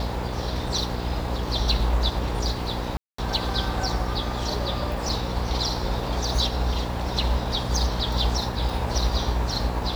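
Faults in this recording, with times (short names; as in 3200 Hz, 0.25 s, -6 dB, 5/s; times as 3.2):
buzz 60 Hz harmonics 9 -30 dBFS
2.97–3.18 gap 0.214 s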